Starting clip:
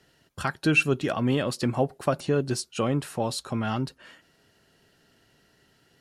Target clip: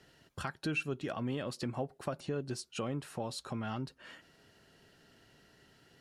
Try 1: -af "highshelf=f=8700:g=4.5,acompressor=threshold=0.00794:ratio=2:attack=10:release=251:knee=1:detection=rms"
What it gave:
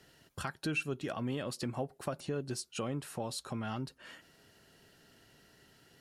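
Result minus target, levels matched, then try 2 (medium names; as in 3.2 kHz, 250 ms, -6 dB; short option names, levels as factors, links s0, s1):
8 kHz band +3.5 dB
-af "highshelf=f=8700:g=-5.5,acompressor=threshold=0.00794:ratio=2:attack=10:release=251:knee=1:detection=rms"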